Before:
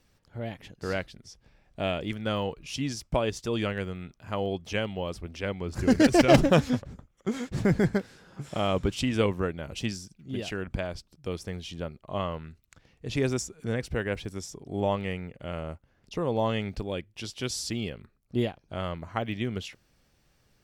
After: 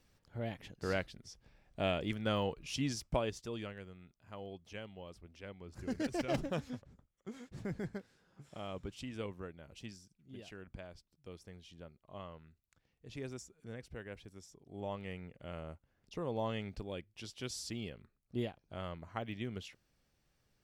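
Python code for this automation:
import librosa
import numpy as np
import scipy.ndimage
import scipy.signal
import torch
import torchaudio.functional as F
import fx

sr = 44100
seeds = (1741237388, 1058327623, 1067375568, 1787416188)

y = fx.gain(x, sr, db=fx.line((3.0, -4.5), (3.8, -17.0), (14.63, -17.0), (15.26, -10.0)))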